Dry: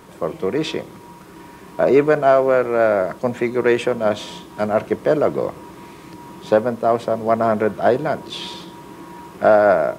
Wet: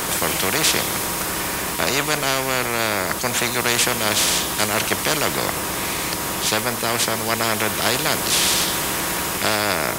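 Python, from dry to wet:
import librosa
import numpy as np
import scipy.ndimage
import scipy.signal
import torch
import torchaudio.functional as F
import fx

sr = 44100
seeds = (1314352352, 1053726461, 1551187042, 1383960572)

y = fx.high_shelf(x, sr, hz=4900.0, db=11.5)
y = fx.rider(y, sr, range_db=5, speed_s=2.0)
y = fx.spectral_comp(y, sr, ratio=4.0)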